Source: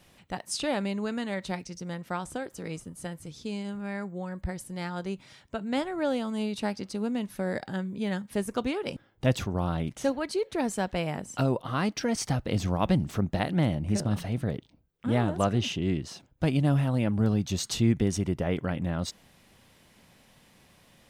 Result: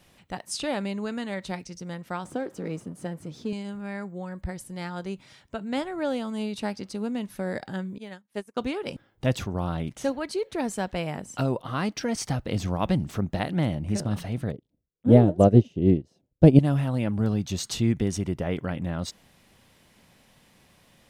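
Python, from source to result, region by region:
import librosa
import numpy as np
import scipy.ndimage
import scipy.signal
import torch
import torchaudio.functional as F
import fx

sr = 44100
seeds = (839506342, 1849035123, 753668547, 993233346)

y = fx.chain(x, sr, fx.law_mismatch(coded='mu'),
    fx.highpass(hz=230.0, slope=12),
    fx.tilt_eq(slope=-3.0), at=(2.25, 3.53))
y = fx.chain(y, sr, fx.highpass(hz=310.0, slope=6),
    fx.upward_expand(threshold_db=-44.0, expansion=2.5), at=(7.98, 8.57))
y = fx.chain(y, sr, fx.low_shelf_res(hz=780.0, db=12.5, q=1.5),
    fx.upward_expand(threshold_db=-26.0, expansion=2.5), at=(14.52, 16.59))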